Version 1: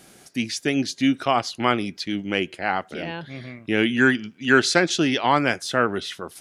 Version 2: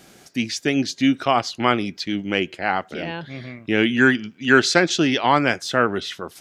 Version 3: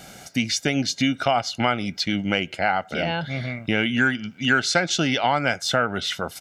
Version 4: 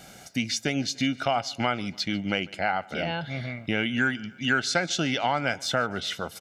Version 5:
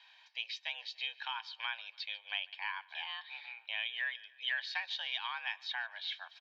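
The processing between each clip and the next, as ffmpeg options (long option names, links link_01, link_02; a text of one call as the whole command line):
ffmpeg -i in.wav -af "equalizer=frequency=9900:width_type=o:width=0.31:gain=-10,volume=2dB" out.wav
ffmpeg -i in.wav -af "aecho=1:1:1.4:0.55,acompressor=threshold=-25dB:ratio=3,volume=5dB" out.wav
ffmpeg -i in.wav -af "aecho=1:1:146|292|438|584:0.0631|0.0353|0.0198|0.0111,volume=-4.5dB" out.wav
ffmpeg -i in.wav -af "aderivative,highpass=frequency=430:width_type=q:width=0.5412,highpass=frequency=430:width_type=q:width=1.307,lowpass=frequency=3500:width_type=q:width=0.5176,lowpass=frequency=3500:width_type=q:width=0.7071,lowpass=frequency=3500:width_type=q:width=1.932,afreqshift=220,volume=2.5dB" out.wav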